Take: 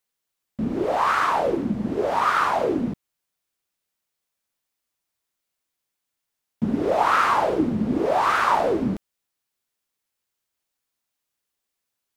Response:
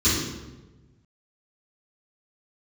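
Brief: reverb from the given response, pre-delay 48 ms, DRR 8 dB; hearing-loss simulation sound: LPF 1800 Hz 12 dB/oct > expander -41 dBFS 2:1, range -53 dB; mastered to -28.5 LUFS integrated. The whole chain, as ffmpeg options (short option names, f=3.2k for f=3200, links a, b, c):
-filter_complex "[0:a]asplit=2[a][b];[1:a]atrim=start_sample=2205,adelay=48[c];[b][c]afir=irnorm=-1:irlink=0,volume=-24dB[d];[a][d]amix=inputs=2:normalize=0,lowpass=1.8k,agate=range=-53dB:threshold=-41dB:ratio=2,volume=-7.5dB"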